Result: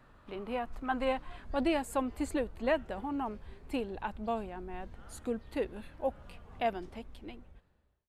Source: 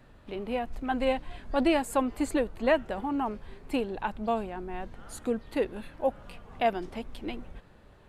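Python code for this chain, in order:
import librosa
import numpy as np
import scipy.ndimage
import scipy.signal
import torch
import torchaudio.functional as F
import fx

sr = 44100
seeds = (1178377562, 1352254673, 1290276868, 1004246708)

y = fx.fade_out_tail(x, sr, length_s=1.43)
y = fx.peak_eq(y, sr, hz=fx.steps((0.0, 1200.0), (1.45, 66.0)), db=9.0, octaves=0.78)
y = y * 10.0 ** (-5.5 / 20.0)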